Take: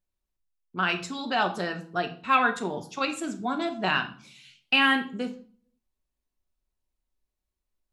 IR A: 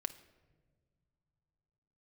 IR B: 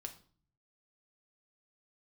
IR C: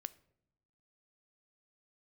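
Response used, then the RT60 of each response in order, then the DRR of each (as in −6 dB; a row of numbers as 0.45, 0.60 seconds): B; non-exponential decay, 0.45 s, non-exponential decay; 8.5, 5.0, 15.5 decibels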